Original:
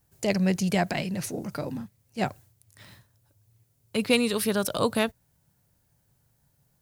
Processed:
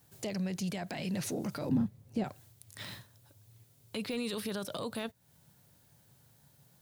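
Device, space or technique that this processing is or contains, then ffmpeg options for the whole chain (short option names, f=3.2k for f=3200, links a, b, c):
broadcast voice chain: -filter_complex "[0:a]highpass=100,deesser=0.6,acompressor=threshold=-37dB:ratio=4,equalizer=f=3.6k:t=o:w=0.59:g=4.5,alimiter=level_in=9dB:limit=-24dB:level=0:latency=1:release=14,volume=-9dB,asettb=1/sr,asplit=3[a][b][c];[a]atrim=end=1.694[d];[b]atrim=start=1.69:end=2.24,asetpts=PTS-STARTPTS,afade=t=in:d=0.004:c=qsin,afade=t=out:st=0.546:d=0.004:c=qsin,tiltshelf=f=970:g=8[e];[c]atrim=start=2.236[f];[d][e]acrossfade=d=0.004:c1=hsin:c2=qsin[g];[g][f]acrossfade=d=0.004:c1=qsin:c2=hsin,volume=5.5dB"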